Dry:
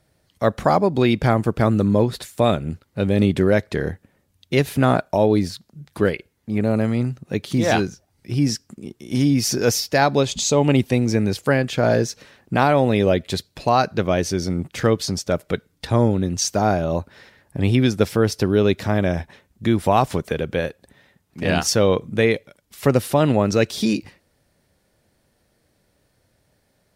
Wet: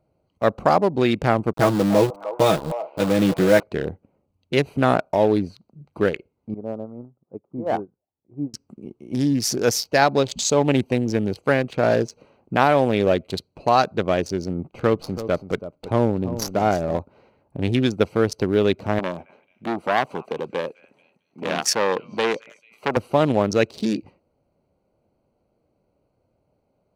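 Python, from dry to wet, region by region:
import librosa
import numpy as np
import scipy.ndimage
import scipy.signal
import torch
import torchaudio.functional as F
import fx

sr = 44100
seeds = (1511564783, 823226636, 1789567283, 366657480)

y = fx.chain(x, sr, fx.comb(ms=6.2, depth=0.82),
    fx.sample_gate(floor_db=-21.5),
    fx.echo_stepped(ms=302, hz=770.0, octaves=0.7, feedback_pct=70, wet_db=-7.0), at=(1.53, 3.63))
y = fx.chain(y, sr, fx.lowpass(hz=1200.0, slope=24),
    fx.low_shelf(hz=210.0, db=-8.5),
    fx.upward_expand(threshold_db=-30.0, expansion=2.5), at=(6.54, 8.54))
y = fx.chain(y, sr, fx.high_shelf(hz=5500.0, db=-4.5),
    fx.echo_single(ms=330, db=-11.5),
    fx.running_max(window=3), at=(14.59, 16.98))
y = fx.chain(y, sr, fx.highpass(hz=200.0, slope=12),
    fx.echo_stepped(ms=220, hz=2000.0, octaves=0.7, feedback_pct=70, wet_db=-9.5),
    fx.transformer_sat(knee_hz=1700.0), at=(18.99, 22.97))
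y = fx.wiener(y, sr, points=25)
y = fx.low_shelf(y, sr, hz=220.0, db=-9.0)
y = y * librosa.db_to_amplitude(1.5)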